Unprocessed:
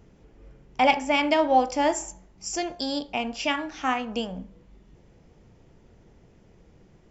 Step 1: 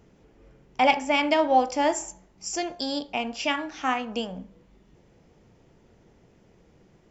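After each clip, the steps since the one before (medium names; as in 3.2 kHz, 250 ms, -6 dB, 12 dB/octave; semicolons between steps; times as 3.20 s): bass shelf 95 Hz -8.5 dB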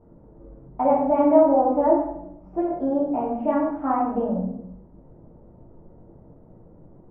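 low-pass 1 kHz 24 dB/octave; peak limiter -18 dBFS, peak gain reduction 8 dB; reverberation RT60 0.75 s, pre-delay 3 ms, DRR -6.5 dB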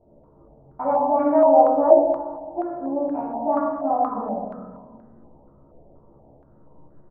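doubling 14 ms -3.5 dB; algorithmic reverb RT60 1.8 s, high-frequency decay 0.75×, pre-delay 5 ms, DRR 4 dB; step-sequenced low-pass 4.2 Hz 690–1600 Hz; trim -8 dB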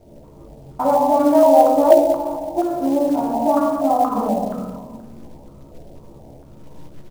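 bass shelf 390 Hz +5.5 dB; in parallel at +2.5 dB: compression 10:1, threshold -23 dBFS, peak gain reduction 17.5 dB; on the sum: companded quantiser 6-bit; trim -1 dB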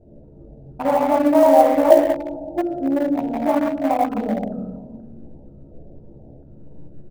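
local Wiener filter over 41 samples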